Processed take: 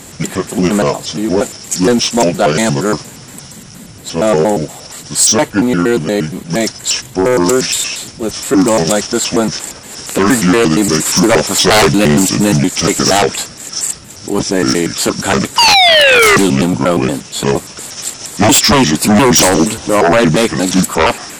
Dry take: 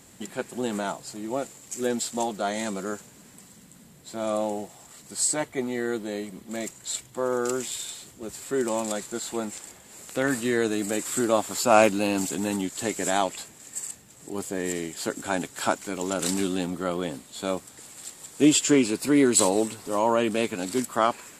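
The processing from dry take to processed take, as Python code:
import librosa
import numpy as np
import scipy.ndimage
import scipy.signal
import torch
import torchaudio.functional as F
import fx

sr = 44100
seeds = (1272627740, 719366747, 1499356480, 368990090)

y = fx.pitch_trill(x, sr, semitones=-5.5, every_ms=117)
y = fx.spec_paint(y, sr, seeds[0], shape='fall', start_s=15.58, length_s=0.79, low_hz=380.0, high_hz=980.0, level_db=-11.0)
y = fx.fold_sine(y, sr, drive_db=15, ceiling_db=-4.0)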